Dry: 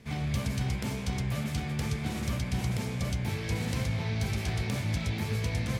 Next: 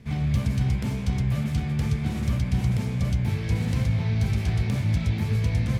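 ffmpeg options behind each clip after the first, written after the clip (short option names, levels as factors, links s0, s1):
-af "bass=f=250:g=8,treble=f=4000:g=-3"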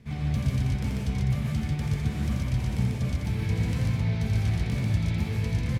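-af "aecho=1:1:84.55|142.9:0.562|0.794,volume=0.596"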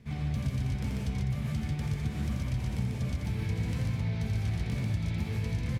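-af "acompressor=threshold=0.0447:ratio=2,volume=0.794"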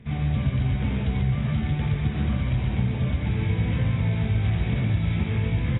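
-af "volume=2.37" -ar 16000 -c:a aac -b:a 16k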